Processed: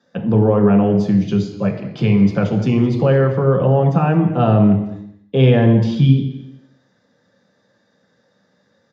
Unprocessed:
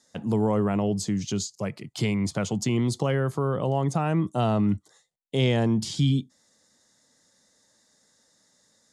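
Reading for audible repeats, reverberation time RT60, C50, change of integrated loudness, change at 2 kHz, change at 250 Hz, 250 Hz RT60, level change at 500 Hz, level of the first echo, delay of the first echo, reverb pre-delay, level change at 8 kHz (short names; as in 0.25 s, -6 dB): 1, 0.85 s, 8.0 dB, +10.5 dB, +7.0 dB, +10.5 dB, 0.85 s, +11.0 dB, -18.0 dB, 0.211 s, 3 ms, under -10 dB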